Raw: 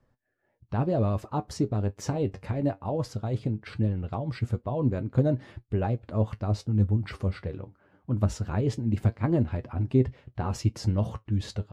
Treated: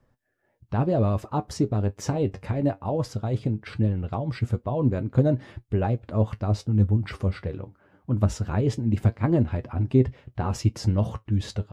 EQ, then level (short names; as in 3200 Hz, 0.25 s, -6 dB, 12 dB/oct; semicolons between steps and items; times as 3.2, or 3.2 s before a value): notch 4300 Hz, Q 27; +3.0 dB